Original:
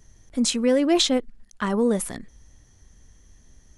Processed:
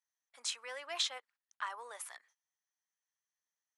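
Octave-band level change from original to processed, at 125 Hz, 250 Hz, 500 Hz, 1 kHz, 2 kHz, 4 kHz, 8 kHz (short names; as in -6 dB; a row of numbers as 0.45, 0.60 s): under -40 dB, under -40 dB, -27.0 dB, -12.0 dB, -9.5 dB, -12.0 dB, -14.0 dB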